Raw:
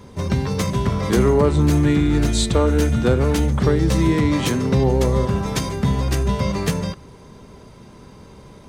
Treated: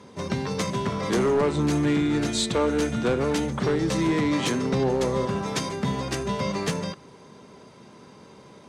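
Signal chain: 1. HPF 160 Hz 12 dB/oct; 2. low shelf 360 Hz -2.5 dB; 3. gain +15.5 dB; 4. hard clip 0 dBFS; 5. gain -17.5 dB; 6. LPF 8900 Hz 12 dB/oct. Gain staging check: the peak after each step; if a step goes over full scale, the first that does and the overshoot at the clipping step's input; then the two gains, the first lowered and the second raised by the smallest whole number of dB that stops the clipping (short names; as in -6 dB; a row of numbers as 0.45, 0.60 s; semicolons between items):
-5.5, -6.5, +9.0, 0.0, -17.5, -16.5 dBFS; step 3, 9.0 dB; step 3 +6.5 dB, step 5 -8.5 dB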